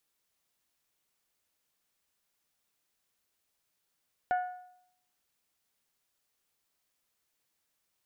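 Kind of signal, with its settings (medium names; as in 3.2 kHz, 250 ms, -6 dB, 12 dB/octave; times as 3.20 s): metal hit bell, lowest mode 728 Hz, decay 0.73 s, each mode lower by 9.5 dB, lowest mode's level -23.5 dB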